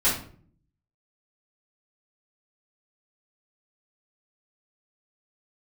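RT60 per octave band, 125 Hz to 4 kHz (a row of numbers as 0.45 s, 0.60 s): 0.90 s, 0.80 s, 0.55 s, 0.45 s, 0.40 s, 0.35 s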